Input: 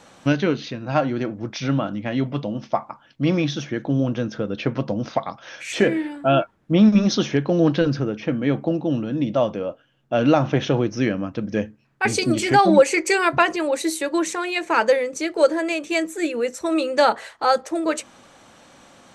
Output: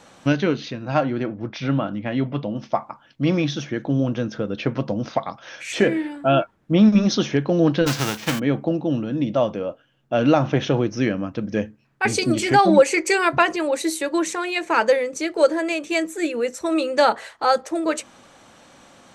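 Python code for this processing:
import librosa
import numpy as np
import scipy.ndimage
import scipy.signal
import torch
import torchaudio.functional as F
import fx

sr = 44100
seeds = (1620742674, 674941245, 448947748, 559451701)

y = fx.lowpass(x, sr, hz=3900.0, slope=12, at=(1.03, 2.56))
y = fx.envelope_flatten(y, sr, power=0.3, at=(7.86, 8.38), fade=0.02)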